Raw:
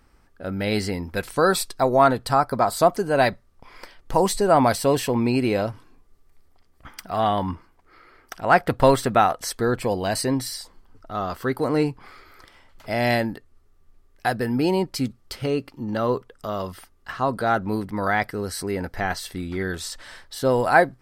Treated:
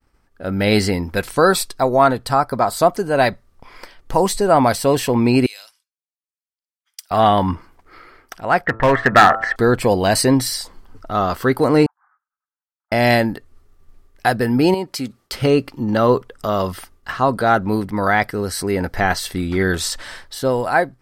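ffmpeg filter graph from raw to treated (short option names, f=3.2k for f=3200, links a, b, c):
-filter_complex "[0:a]asettb=1/sr,asplit=3[a][b][c];[a]atrim=end=5.464[d];[b]atrim=start=5.46:end=7.11,asetpts=PTS-STARTPTS,afade=t=in:d=0.004:c=qsin,afade=t=out:st=1.646:d=0.004:c=qsin,bandpass=f=5.5k:t=q:w=0.7,aderivative[e];[c]atrim=start=7.106[f];[d][e]acrossfade=d=0.004:c1=hsin:c2=qsin[g];[g][f]acrossfade=d=0.004:c1=qsin:c2=hsin,asettb=1/sr,asplit=3[h][i][j];[h]atrim=end=8.664[k];[i]atrim=start=8.66:end=9.56,asetpts=PTS-STARTPTS,afade=t=in:d=0.004:c=qsin,afade=t=out:st=0.896:d=0.004:c=qsin,lowpass=f=1.8k:t=q:w=11,bandreject=f=111.7:t=h:w=4,bandreject=f=223.4:t=h:w=4,bandreject=f=335.1:t=h:w=4,bandreject=f=446.8:t=h:w=4,bandreject=f=558.5:t=h:w=4,bandreject=f=670.2:t=h:w=4,bandreject=f=781.9:t=h:w=4,bandreject=f=893.6:t=h:w=4,bandreject=f=1.0053k:t=h:w=4,bandreject=f=1.117k:t=h:w=4,bandreject=f=1.2287k:t=h:w=4,bandreject=f=1.3404k:t=h:w=4,bandreject=f=1.4521k:t=h:w=4,asoftclip=type=hard:threshold=-9.5dB[l];[j]atrim=start=9.556[m];[k][l]acrossfade=d=0.004:c1=hsin:c2=qsin[n];[n][m]acrossfade=d=0.004:c1=qsin:c2=hsin,asettb=1/sr,asplit=3[o][p][q];[o]atrim=end=11.864[r];[p]atrim=start=11.86:end=12.92,asetpts=PTS-STARTPTS,afade=t=in:d=0.004:c=qsin,afade=t=out:st=1.056:d=0.004:c=qsin,aeval=exprs='if(lt(val(0),0),0.251*val(0),val(0))':c=same,asuperpass=centerf=1100:order=12:qfactor=1.2,aderivative[s];[q]atrim=start=12.916[t];[r][s]acrossfade=d=0.004:c1=hsin:c2=qsin[u];[u][t]acrossfade=d=0.004:c1=qsin:c2=hsin,asettb=1/sr,asplit=3[v][w][x];[v]atrim=end=14.744[y];[w]atrim=start=14.74:end=15.33,asetpts=PTS-STARTPTS,afade=t=in:d=0.004:c=qsin,afade=t=out:st=0.586:d=0.004:c=qsin,highpass=f=280:p=1,acompressor=threshold=-37dB:ratio=1.5:attack=3.2:release=140:knee=1:detection=peak[z];[x]atrim=start=15.326[aa];[y][z]acrossfade=d=0.004:c1=hsin:c2=qsin[ab];[ab][aa]acrossfade=d=0.004:c1=qsin:c2=hsin,agate=range=-33dB:threshold=-53dB:ratio=3:detection=peak,dynaudnorm=f=100:g=9:m=11.5dB,volume=-1dB"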